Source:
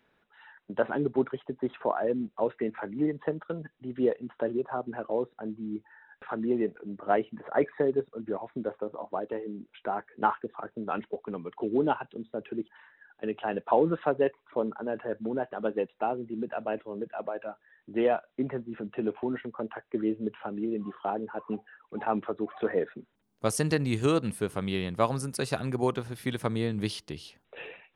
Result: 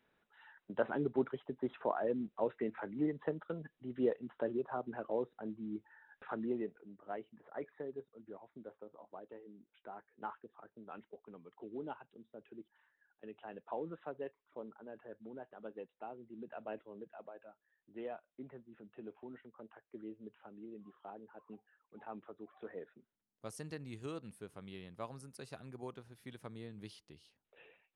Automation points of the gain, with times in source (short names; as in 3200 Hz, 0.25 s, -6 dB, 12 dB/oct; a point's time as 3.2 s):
6.34 s -7 dB
7.04 s -18 dB
16.13 s -18 dB
16.71 s -12 dB
17.49 s -19 dB